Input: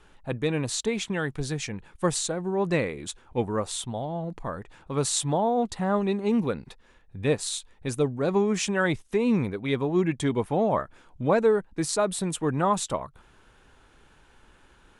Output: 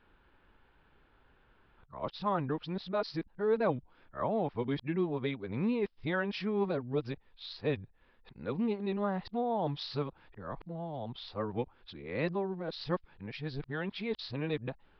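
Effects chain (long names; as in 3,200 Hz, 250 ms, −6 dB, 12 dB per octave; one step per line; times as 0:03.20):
played backwards from end to start
low-pass that shuts in the quiet parts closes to 2,900 Hz, open at −19.5 dBFS
downsampling to 11,025 Hz
level −8 dB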